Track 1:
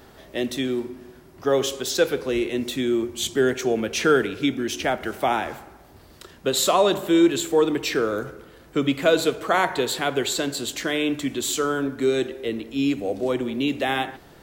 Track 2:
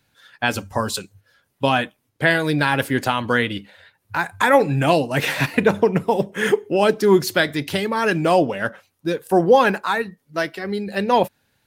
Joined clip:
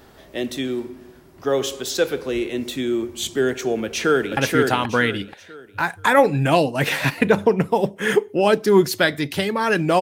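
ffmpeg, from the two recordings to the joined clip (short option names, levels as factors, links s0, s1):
-filter_complex "[0:a]apad=whole_dur=10.01,atrim=end=10.01,atrim=end=4.372[s0];[1:a]atrim=start=2.728:end=8.37[s1];[s0][s1]acrossfade=d=0.004:c1=hsin:c2=hsin,asplit=2[s2][s3];[s3]afade=t=in:st=3.83:d=0.01,afade=t=out:st=4.37:d=0.01,aecho=0:1:480|960|1440|1920:0.794328|0.238298|0.0714895|0.0214469[s4];[s2][s4]amix=inputs=2:normalize=0"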